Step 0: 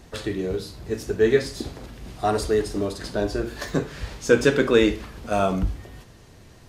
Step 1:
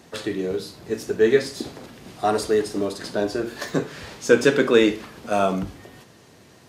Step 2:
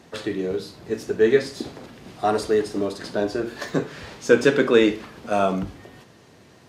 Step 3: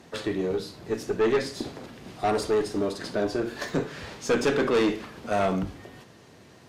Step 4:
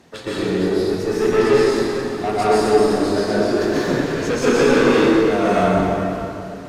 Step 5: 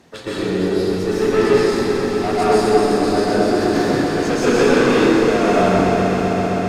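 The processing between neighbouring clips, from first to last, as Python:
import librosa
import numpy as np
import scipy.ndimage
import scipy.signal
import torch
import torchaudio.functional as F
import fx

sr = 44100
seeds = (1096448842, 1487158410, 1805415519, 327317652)

y1 = scipy.signal.sosfilt(scipy.signal.butter(2, 160.0, 'highpass', fs=sr, output='sos'), x)
y1 = y1 * librosa.db_to_amplitude(1.5)
y2 = fx.high_shelf(y1, sr, hz=6800.0, db=-7.5)
y3 = fx.tube_stage(y2, sr, drive_db=18.0, bias=0.3)
y4 = fx.rev_plate(y3, sr, seeds[0], rt60_s=2.9, hf_ratio=0.65, predelay_ms=110, drr_db=-9.5)
y5 = fx.echo_swell(y4, sr, ms=129, loudest=5, wet_db=-13)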